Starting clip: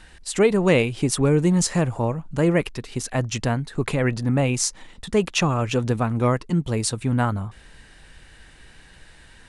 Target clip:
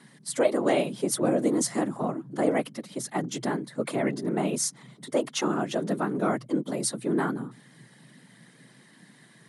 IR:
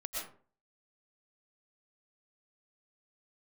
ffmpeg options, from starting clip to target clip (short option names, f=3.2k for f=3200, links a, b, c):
-af "superequalizer=12b=0.501:16b=1.78,afftfilt=real='hypot(re,im)*cos(2*PI*random(0))':imag='hypot(re,im)*sin(2*PI*random(1))':win_size=512:overlap=0.75,afreqshift=120"